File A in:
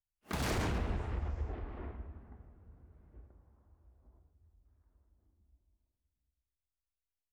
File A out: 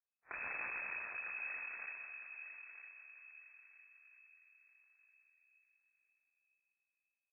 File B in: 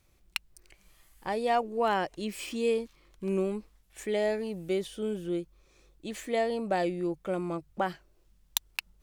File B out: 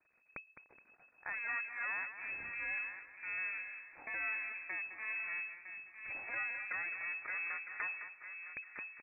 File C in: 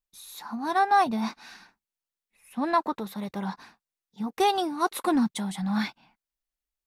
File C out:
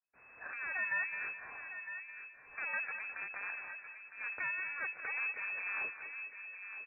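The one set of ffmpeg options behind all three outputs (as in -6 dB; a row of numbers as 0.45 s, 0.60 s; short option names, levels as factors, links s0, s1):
-filter_complex "[0:a]aeval=exprs='max(val(0),0)':c=same,acrossover=split=99|590[s0][s1][s2];[s0]acompressor=threshold=0.0178:ratio=4[s3];[s1]acompressor=threshold=0.01:ratio=4[s4];[s2]acompressor=threshold=0.00447:ratio=4[s5];[s3][s4][s5]amix=inputs=3:normalize=0,lowshelf=f=630:t=q:w=1.5:g=-7.5,asplit=2[s6][s7];[s7]adelay=958,lowpass=f=1100:p=1,volume=0.398,asplit=2[s8][s9];[s9]adelay=958,lowpass=f=1100:p=1,volume=0.37,asplit=2[s10][s11];[s11]adelay=958,lowpass=f=1100:p=1,volume=0.37,asplit=2[s12][s13];[s13]adelay=958,lowpass=f=1100:p=1,volume=0.37[s14];[s8][s10][s12][s14]amix=inputs=4:normalize=0[s15];[s6][s15]amix=inputs=2:normalize=0,lowpass=f=2200:t=q:w=0.5098,lowpass=f=2200:t=q:w=0.6013,lowpass=f=2200:t=q:w=0.9,lowpass=f=2200:t=q:w=2.563,afreqshift=-2600,asplit=2[s16][s17];[s17]aecho=0:1:211|422|633|844:0.299|0.119|0.0478|0.0191[s18];[s16][s18]amix=inputs=2:normalize=0,volume=1.26"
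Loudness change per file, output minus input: -5.5 LU, -7.5 LU, -11.5 LU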